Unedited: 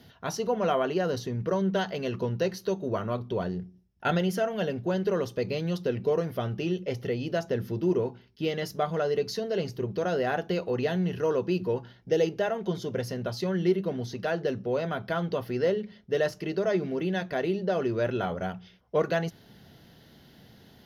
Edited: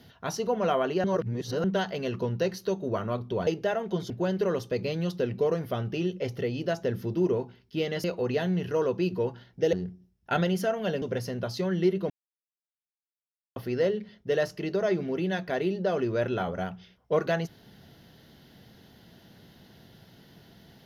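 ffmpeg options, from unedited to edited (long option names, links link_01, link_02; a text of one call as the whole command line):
ffmpeg -i in.wav -filter_complex "[0:a]asplit=10[link_01][link_02][link_03][link_04][link_05][link_06][link_07][link_08][link_09][link_10];[link_01]atrim=end=1.042[link_11];[link_02]atrim=start=1.038:end=1.642,asetpts=PTS-STARTPTS,areverse[link_12];[link_03]atrim=start=1.638:end=3.472[link_13];[link_04]atrim=start=12.218:end=12.852[link_14];[link_05]atrim=start=4.758:end=8.702[link_15];[link_06]atrim=start=10.528:end=12.222[link_16];[link_07]atrim=start=3.468:end=4.762[link_17];[link_08]atrim=start=12.848:end=13.93,asetpts=PTS-STARTPTS,afade=type=out:start_time=1.078:duration=0.004:curve=hsin[link_18];[link_09]atrim=start=13.93:end=15.39,asetpts=PTS-STARTPTS,volume=0[link_19];[link_10]atrim=start=15.39,asetpts=PTS-STARTPTS,afade=type=in:duration=0.004:curve=hsin[link_20];[link_11][link_12]acrossfade=duration=0.004:curve1=hsin:curve2=hsin[link_21];[link_21][link_13]acrossfade=duration=0.004:curve1=hsin:curve2=hsin[link_22];[link_22][link_14]acrossfade=duration=0.004:curve1=hsin:curve2=hsin[link_23];[link_23][link_15]acrossfade=duration=0.004:curve1=hsin:curve2=hsin[link_24];[link_24][link_16]acrossfade=duration=0.004:curve1=hsin:curve2=hsin[link_25];[link_25][link_17]acrossfade=duration=0.004:curve1=hsin:curve2=hsin[link_26];[link_18][link_19][link_20]concat=n=3:v=0:a=1[link_27];[link_26][link_27]acrossfade=duration=0.004:curve1=hsin:curve2=hsin" out.wav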